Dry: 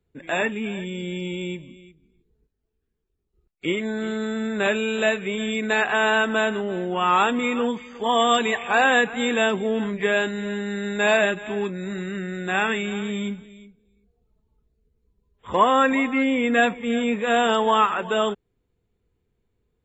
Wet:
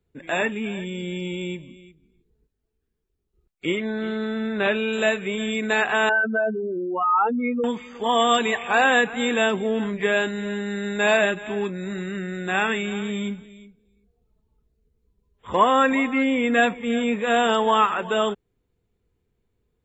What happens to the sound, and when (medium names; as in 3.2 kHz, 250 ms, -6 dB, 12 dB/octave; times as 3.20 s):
3.77–4.93 s: low-pass 4.7 kHz 24 dB/octave
6.09–7.64 s: spectral contrast enhancement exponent 3.3